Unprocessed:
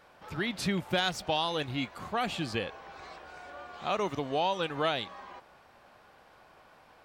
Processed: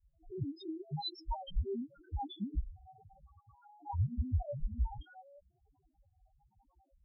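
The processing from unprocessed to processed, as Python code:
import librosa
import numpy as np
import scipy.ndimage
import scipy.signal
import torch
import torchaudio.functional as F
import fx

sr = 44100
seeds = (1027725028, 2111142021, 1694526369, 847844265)

y = fx.band_invert(x, sr, width_hz=500)
y = fx.peak_eq(y, sr, hz=1200.0, db=-10.5, octaves=2.2)
y = fx.spec_topn(y, sr, count=1)
y = fx.notch_comb(y, sr, f0_hz=170.0)
y = fx.comb_cascade(y, sr, direction='rising', hz=0.72)
y = F.gain(torch.from_numpy(y), 12.0).numpy()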